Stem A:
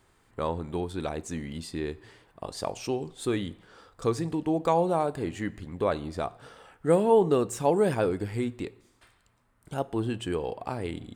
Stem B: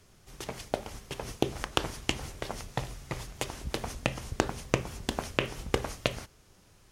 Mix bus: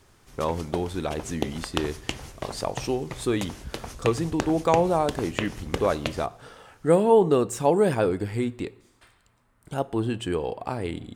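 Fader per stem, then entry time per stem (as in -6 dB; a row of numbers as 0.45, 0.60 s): +3.0, -1.0 dB; 0.00, 0.00 s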